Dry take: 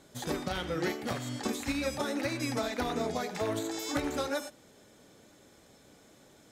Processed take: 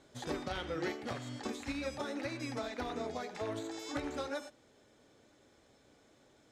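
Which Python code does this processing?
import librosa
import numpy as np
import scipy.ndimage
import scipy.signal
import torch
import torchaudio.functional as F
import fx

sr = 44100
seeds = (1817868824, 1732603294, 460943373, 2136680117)

y = fx.peak_eq(x, sr, hz=180.0, db=-7.5, octaves=0.39)
y = fx.rider(y, sr, range_db=10, speed_s=2.0)
y = fx.air_absorb(y, sr, metres=56.0)
y = y * librosa.db_to_amplitude(-5.5)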